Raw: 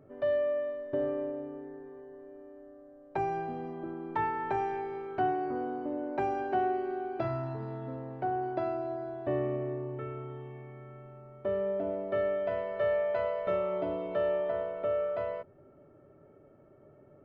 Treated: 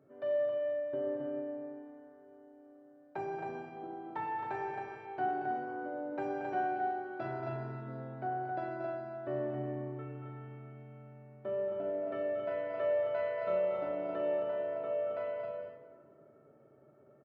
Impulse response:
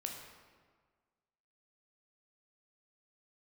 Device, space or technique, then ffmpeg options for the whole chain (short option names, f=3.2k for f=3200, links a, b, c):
stadium PA: -filter_complex "[0:a]highpass=130,equalizer=f=1.5k:t=o:w=0.23:g=5,aecho=1:1:230.3|268.2:0.355|0.562[a];[1:a]atrim=start_sample=2205[b];[a][b]afir=irnorm=-1:irlink=0,volume=-5dB"